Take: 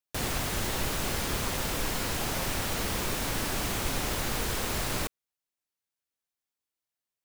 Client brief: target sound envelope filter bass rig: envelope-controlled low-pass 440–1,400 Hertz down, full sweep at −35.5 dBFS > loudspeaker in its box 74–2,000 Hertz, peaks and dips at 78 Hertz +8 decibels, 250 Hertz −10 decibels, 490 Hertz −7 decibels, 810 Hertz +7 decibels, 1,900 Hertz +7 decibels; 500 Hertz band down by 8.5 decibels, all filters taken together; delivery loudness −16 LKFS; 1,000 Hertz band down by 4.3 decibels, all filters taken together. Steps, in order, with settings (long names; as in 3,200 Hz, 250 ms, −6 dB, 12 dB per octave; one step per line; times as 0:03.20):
parametric band 500 Hz −6 dB
parametric band 1,000 Hz −8 dB
envelope-controlled low-pass 440–1,400 Hz down, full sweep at −35.5 dBFS
loudspeaker in its box 74–2,000 Hz, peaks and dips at 78 Hz +8 dB, 250 Hz −10 dB, 490 Hz −7 dB, 810 Hz +7 dB, 1,900 Hz +7 dB
level +21 dB